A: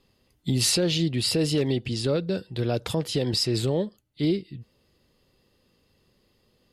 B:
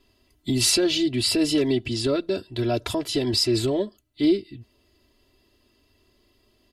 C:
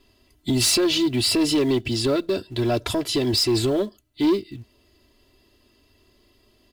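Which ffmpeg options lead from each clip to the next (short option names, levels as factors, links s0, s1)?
-af "aecho=1:1:3:0.95"
-filter_complex "[0:a]asplit=2[s0][s1];[s1]acrusher=bits=4:mode=log:mix=0:aa=0.000001,volume=0.501[s2];[s0][s2]amix=inputs=2:normalize=0,asoftclip=type=tanh:threshold=0.2"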